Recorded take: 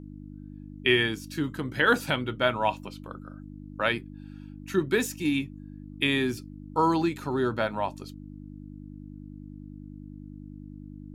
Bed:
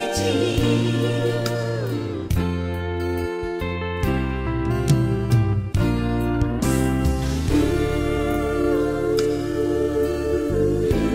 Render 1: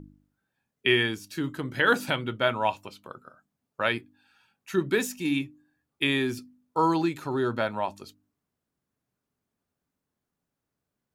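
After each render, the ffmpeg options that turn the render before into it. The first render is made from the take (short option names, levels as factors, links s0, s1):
-af "bandreject=f=50:t=h:w=4,bandreject=f=100:t=h:w=4,bandreject=f=150:t=h:w=4,bandreject=f=200:t=h:w=4,bandreject=f=250:t=h:w=4,bandreject=f=300:t=h:w=4"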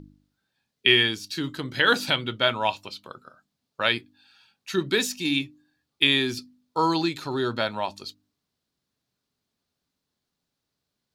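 -af "equalizer=f=4200:w=1.2:g=13"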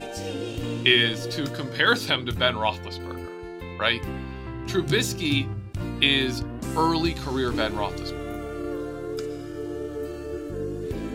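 -filter_complex "[1:a]volume=0.282[s0];[0:a][s0]amix=inputs=2:normalize=0"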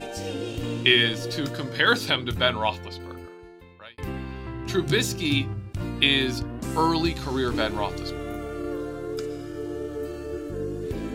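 -filter_complex "[0:a]asplit=2[s0][s1];[s0]atrim=end=3.98,asetpts=PTS-STARTPTS,afade=t=out:st=2.58:d=1.4[s2];[s1]atrim=start=3.98,asetpts=PTS-STARTPTS,afade=t=in:d=0.004:c=hsin[s3];[s2][s3]concat=n=2:v=0:a=1"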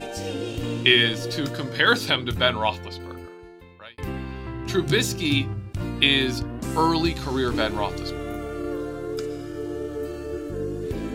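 -af "volume=1.19"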